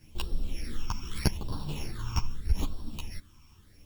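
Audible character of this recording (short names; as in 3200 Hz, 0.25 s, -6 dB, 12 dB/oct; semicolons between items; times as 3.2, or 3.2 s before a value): a buzz of ramps at a fixed pitch in blocks of 8 samples; phasing stages 8, 0.8 Hz, lowest notch 540–2100 Hz; a quantiser's noise floor 12-bit, dither triangular; a shimmering, thickened sound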